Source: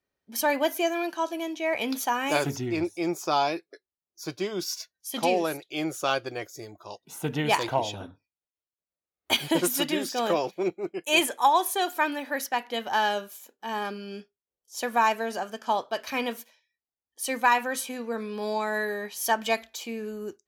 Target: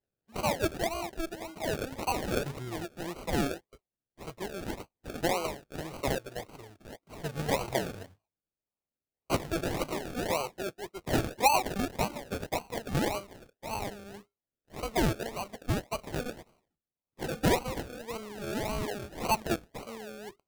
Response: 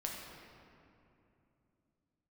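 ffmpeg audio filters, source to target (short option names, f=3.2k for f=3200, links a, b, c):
-af "equalizer=f=280:w=2:g=-14,acrusher=samples=35:mix=1:aa=0.000001:lfo=1:lforange=21:lforate=1.8,volume=-3.5dB"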